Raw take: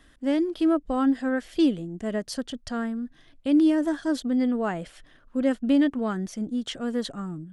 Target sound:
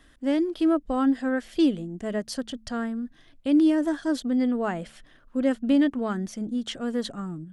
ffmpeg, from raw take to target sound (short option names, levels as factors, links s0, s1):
-af "bandreject=f=73.51:t=h:w=4,bandreject=f=147.02:t=h:w=4,bandreject=f=220.53:t=h:w=4"